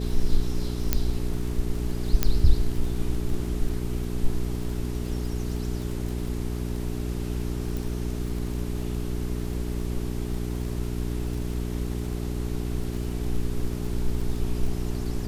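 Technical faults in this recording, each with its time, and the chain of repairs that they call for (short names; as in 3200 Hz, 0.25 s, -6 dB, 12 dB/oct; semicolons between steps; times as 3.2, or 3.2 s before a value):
crackle 27/s -32 dBFS
hum 60 Hz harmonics 7 -30 dBFS
0.93 pop -6 dBFS
2.23 pop -6 dBFS
7.77 pop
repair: de-click; de-hum 60 Hz, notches 7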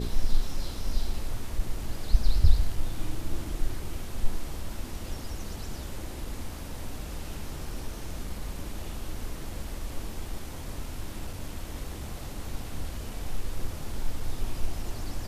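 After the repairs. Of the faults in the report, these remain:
none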